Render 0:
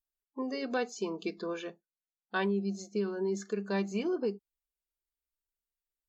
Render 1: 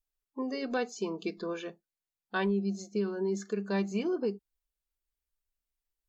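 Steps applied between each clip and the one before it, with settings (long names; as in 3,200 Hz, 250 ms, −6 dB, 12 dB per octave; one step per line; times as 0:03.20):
low-shelf EQ 88 Hz +11.5 dB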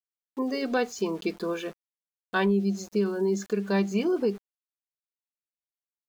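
centre clipping without the shift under −51 dBFS
level +5.5 dB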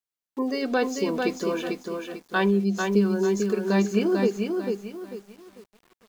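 feedback echo at a low word length 445 ms, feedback 35%, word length 9 bits, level −4 dB
level +2 dB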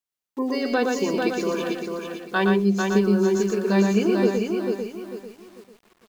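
single-tap delay 117 ms −4 dB
level +1 dB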